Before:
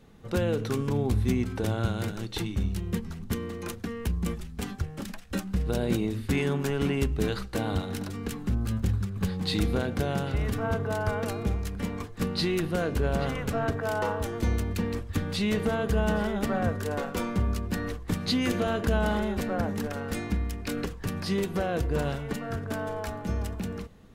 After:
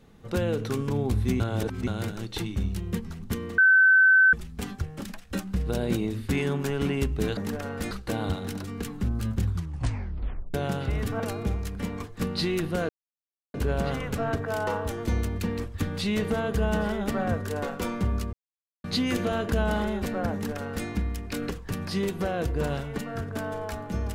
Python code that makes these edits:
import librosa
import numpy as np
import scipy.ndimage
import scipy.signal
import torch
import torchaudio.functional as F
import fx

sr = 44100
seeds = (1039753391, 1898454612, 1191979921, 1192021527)

y = fx.edit(x, sr, fx.reverse_span(start_s=1.4, length_s=0.47),
    fx.bleep(start_s=3.58, length_s=0.75, hz=1530.0, db=-14.0),
    fx.tape_stop(start_s=8.91, length_s=1.09),
    fx.cut(start_s=10.66, length_s=0.54),
    fx.insert_silence(at_s=12.89, length_s=0.65),
    fx.silence(start_s=17.68, length_s=0.51),
    fx.duplicate(start_s=19.68, length_s=0.54, to_s=7.37), tone=tone)